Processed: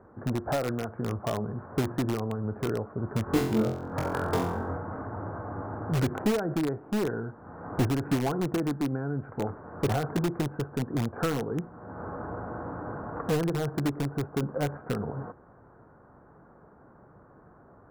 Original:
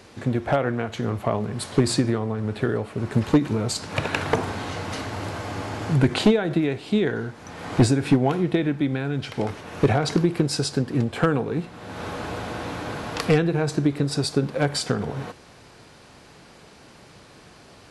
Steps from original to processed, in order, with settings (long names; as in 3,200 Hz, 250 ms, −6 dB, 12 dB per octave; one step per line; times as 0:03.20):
Butterworth low-pass 1,500 Hz 48 dB per octave
in parallel at −5.5 dB: wrap-around overflow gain 15.5 dB
0:03.24–0:04.77: on the sum: flutter between parallel walls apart 3.9 metres, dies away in 0.53 s
level −8.5 dB